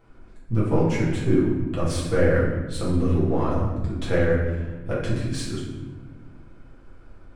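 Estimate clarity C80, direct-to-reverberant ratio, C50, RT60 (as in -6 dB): 4.5 dB, -7.5 dB, 1.0 dB, no single decay rate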